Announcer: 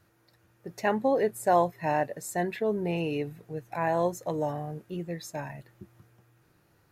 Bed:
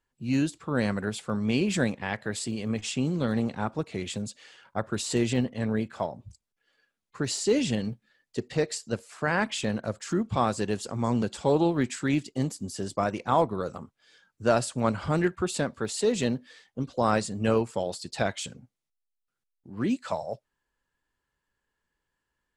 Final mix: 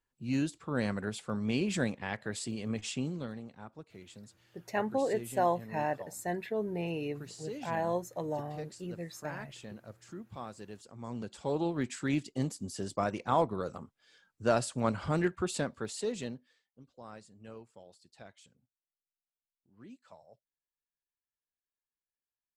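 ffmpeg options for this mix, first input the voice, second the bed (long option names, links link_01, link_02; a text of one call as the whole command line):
ffmpeg -i stem1.wav -i stem2.wav -filter_complex "[0:a]adelay=3900,volume=-5.5dB[link_01];[1:a]volume=8dB,afade=type=out:start_time=2.91:duration=0.48:silence=0.237137,afade=type=in:start_time=10.93:duration=1.31:silence=0.211349,afade=type=out:start_time=15.54:duration=1.09:silence=0.1[link_02];[link_01][link_02]amix=inputs=2:normalize=0" out.wav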